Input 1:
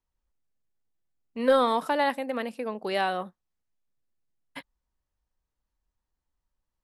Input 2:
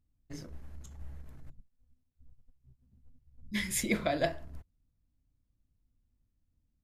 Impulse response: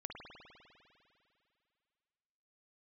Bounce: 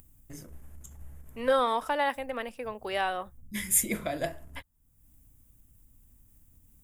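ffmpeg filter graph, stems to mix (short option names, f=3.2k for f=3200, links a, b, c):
-filter_complex "[0:a]highpass=f=500:p=1,volume=-1dB[a];[1:a]acompressor=mode=upward:threshold=-41dB:ratio=2.5,aexciter=amount=6.3:drive=2.4:freq=7.2k,volume=-2dB[b];[a][b]amix=inputs=2:normalize=0,bandreject=f=4.2k:w=5.7"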